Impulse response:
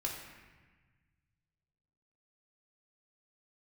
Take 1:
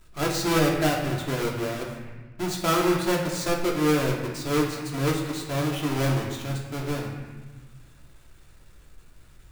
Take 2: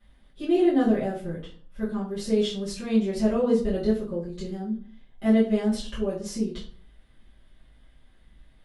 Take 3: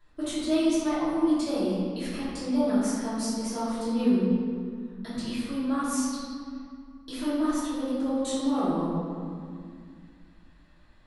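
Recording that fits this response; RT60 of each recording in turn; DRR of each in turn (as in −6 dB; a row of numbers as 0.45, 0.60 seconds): 1; 1.3, 0.45, 2.1 seconds; −2.0, −12.5, −13.5 decibels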